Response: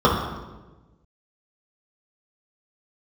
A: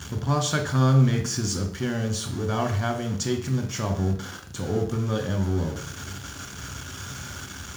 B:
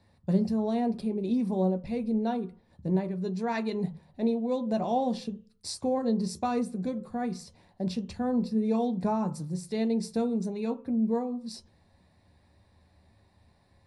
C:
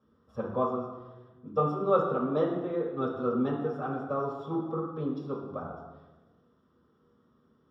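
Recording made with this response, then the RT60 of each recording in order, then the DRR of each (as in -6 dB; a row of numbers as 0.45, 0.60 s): C; 0.60, 0.40, 1.2 s; 4.0, 6.5, -7.0 dB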